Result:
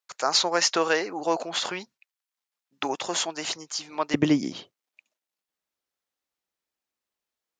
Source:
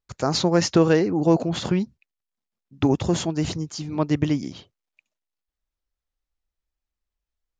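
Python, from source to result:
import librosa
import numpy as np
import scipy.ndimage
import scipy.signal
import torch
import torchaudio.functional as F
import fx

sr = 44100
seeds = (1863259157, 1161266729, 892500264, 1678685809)

y = fx.highpass(x, sr, hz=fx.steps((0.0, 830.0), (4.14, 240.0)), slope=12)
y = F.gain(torch.from_numpy(y), 4.0).numpy()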